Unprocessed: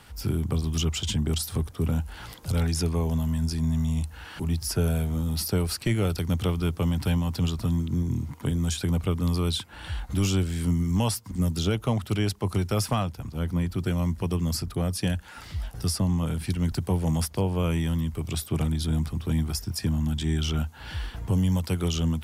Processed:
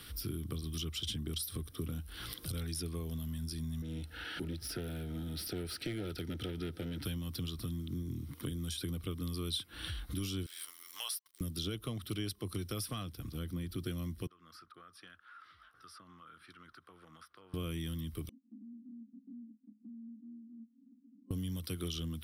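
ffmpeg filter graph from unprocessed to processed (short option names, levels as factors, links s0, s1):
-filter_complex "[0:a]asettb=1/sr,asplit=3[s0][s1][s2];[s0]atrim=end=3.824[s3];[s1]atrim=start=3.82:end=7.04,asetpts=PTS-STARTPTS,afade=t=in:d=0.004:c=qsin,afade=t=out:st=3.216:d=0.004:c=qsin,asoftclip=type=hard:threshold=0.0668,asplit=2[s4][s5];[s5]highpass=f=720:p=1,volume=5.62,asoftclip=type=tanh:threshold=0.1[s6];[s4][s6]amix=inputs=2:normalize=0,lowpass=f=1200:p=1,volume=0.501,asuperstop=centerf=1100:order=12:qfactor=4.4[s7];[s2]atrim=start=7.036[s8];[s3][s7]acrossfade=d=0.004:c1=hsin:c2=qsin[s9];[s9][s8]acrossfade=d=0.004:c1=qsin:c2=hsin,asettb=1/sr,asplit=3[s10][s11][s12];[s10]atrim=end=10.464[s13];[s11]atrim=start=10.46:end=11.41,asetpts=PTS-STARTPTS,afade=t=in:d=0.004:c=qsin,afade=t=out:st=0.946:d=0.004:c=qsin,highpass=f=800:w=0.5412,highpass=f=800:w=1.3066,aeval=exprs='sgn(val(0))*max(abs(val(0))-0.00237,0)':c=same[s14];[s12]atrim=start=11.406[s15];[s13][s14]acrossfade=d=0.004:c1=hsin:c2=qsin[s16];[s16][s15]acrossfade=d=0.004:c1=qsin:c2=hsin,asettb=1/sr,asplit=3[s17][s18][s19];[s17]atrim=end=14.274[s20];[s18]atrim=start=14.27:end=17.54,asetpts=PTS-STARTPTS,afade=t=in:d=0.004:c=qsin,afade=t=out:st=3.266:d=0.004:c=qsin,bandpass=f=1300:t=q:w=5.7,acompressor=threshold=0.00355:ratio=4:attack=3.2:release=140:knee=1:detection=peak[s21];[s19]atrim=start=17.536[s22];[s20][s21]acrossfade=d=0.004:c1=hsin:c2=qsin[s23];[s23][s22]acrossfade=d=0.004:c1=qsin:c2=hsin,asettb=1/sr,asplit=3[s24][s25][s26];[s24]atrim=end=18.294[s27];[s25]atrim=start=18.29:end=21.31,asetpts=PTS-STARTPTS,afade=t=in:d=0.004:c=qsin,afade=t=out:st=3.016:d=0.004:c=qsin,asuperpass=centerf=240:order=8:qfactor=3.7,acompressor=threshold=0.00141:ratio=2:attack=3.2:release=140:knee=1:detection=peak[s28];[s26]atrim=start=21.306[s29];[s27][s28]acrossfade=d=0.004:c1=hsin:c2=qsin[s30];[s30][s29]acrossfade=d=0.004:c1=qsin:c2=hsin,highshelf=f=5400:g=11.5,acompressor=threshold=0.0126:ratio=3,superequalizer=6b=1.78:8b=0.501:9b=0.282:13b=1.78:15b=0.282,volume=0.75"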